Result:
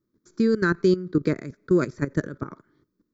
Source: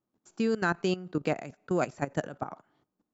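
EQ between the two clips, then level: bass shelf 120 Hz +9.5 dB; peaking EQ 370 Hz +8 dB 0.8 oct; static phaser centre 2.8 kHz, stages 6; +4.5 dB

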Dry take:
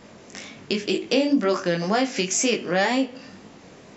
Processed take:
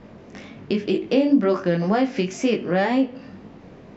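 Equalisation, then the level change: distance through air 130 m; tilt EQ -2 dB/octave; 0.0 dB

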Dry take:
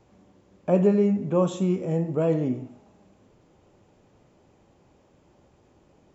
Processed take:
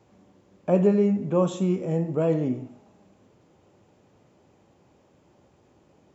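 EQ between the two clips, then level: high-pass 74 Hz; 0.0 dB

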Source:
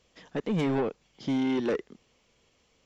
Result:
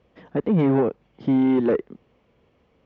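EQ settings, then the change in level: high-pass 47 Hz; low-pass 2.4 kHz 12 dB/octave; tilt shelf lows +4.5 dB, about 1.1 kHz; +4.5 dB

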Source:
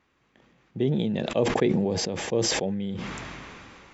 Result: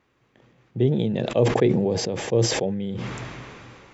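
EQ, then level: peaking EQ 120 Hz +12.5 dB 0.26 oct; peaking EQ 450 Hz +4.5 dB 1.3 oct; 0.0 dB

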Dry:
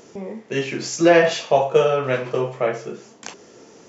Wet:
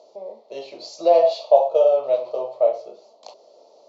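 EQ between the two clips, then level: two resonant band-passes 1.6 kHz, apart 2.8 oct; peaking EQ 1 kHz +15 dB 1.9 oct; -1.0 dB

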